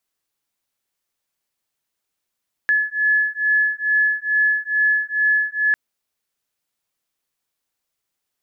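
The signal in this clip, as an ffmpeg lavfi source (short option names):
-f lavfi -i "aevalsrc='0.112*(sin(2*PI*1710*t)+sin(2*PI*1712.3*t))':d=3.05:s=44100"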